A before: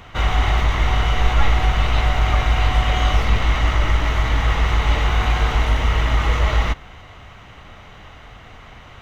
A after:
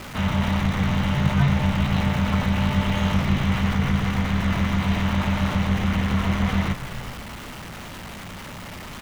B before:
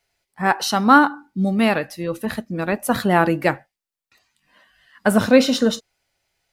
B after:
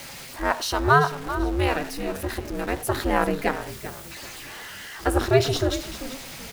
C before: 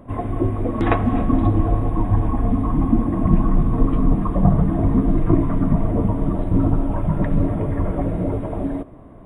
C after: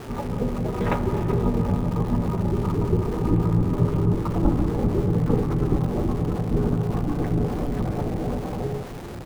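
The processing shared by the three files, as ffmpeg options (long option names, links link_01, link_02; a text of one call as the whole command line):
ffmpeg -i in.wav -filter_complex "[0:a]aeval=exprs='val(0)+0.5*0.0447*sgn(val(0))':channel_layout=same,aeval=exprs='val(0)*sin(2*PI*140*n/s)':channel_layout=same,asplit=4[link_01][link_02][link_03][link_04];[link_02]adelay=388,afreqshift=-68,volume=-12.5dB[link_05];[link_03]adelay=776,afreqshift=-136,volume=-21.9dB[link_06];[link_04]adelay=1164,afreqshift=-204,volume=-31.2dB[link_07];[link_01][link_05][link_06][link_07]amix=inputs=4:normalize=0,volume=-3.5dB" out.wav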